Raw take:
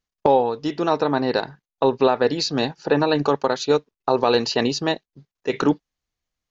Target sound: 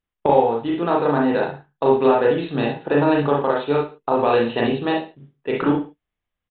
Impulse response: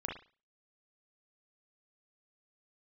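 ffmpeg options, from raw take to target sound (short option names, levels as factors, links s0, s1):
-filter_complex "[0:a]acrusher=bits=6:mode=log:mix=0:aa=0.000001[s0];[1:a]atrim=start_sample=2205,afade=t=out:st=0.27:d=0.01,atrim=end_sample=12348[s1];[s0][s1]afir=irnorm=-1:irlink=0,aresample=8000,aresample=44100"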